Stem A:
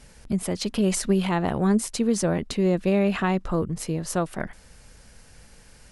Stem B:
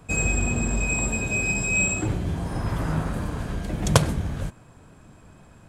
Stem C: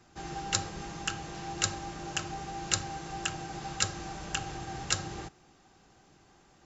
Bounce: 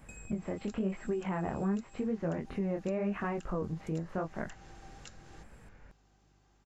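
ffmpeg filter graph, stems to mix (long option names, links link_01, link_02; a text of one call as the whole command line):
ffmpeg -i stem1.wav -i stem2.wav -i stem3.wav -filter_complex "[0:a]lowpass=frequency=2200:width=0.5412,lowpass=frequency=2200:width=1.3066,flanger=delay=18:depth=7.9:speed=0.91,volume=-1dB,asplit=2[link_01][link_02];[1:a]highshelf=frequency=5500:gain=7,acompressor=threshold=-29dB:ratio=3,volume=-10dB[link_03];[2:a]adelay=150,volume=-10.5dB[link_04];[link_02]apad=whole_len=250799[link_05];[link_03][link_05]sidechaincompress=threshold=-39dB:ratio=3:attack=16:release=470[link_06];[link_06][link_04]amix=inputs=2:normalize=0,aeval=exprs='val(0)+0.000398*(sin(2*PI*50*n/s)+sin(2*PI*2*50*n/s)/2+sin(2*PI*3*50*n/s)/3+sin(2*PI*4*50*n/s)/4+sin(2*PI*5*50*n/s)/5)':channel_layout=same,acompressor=threshold=-50dB:ratio=5,volume=0dB[link_07];[link_01][link_07]amix=inputs=2:normalize=0,acompressor=threshold=-35dB:ratio=2" out.wav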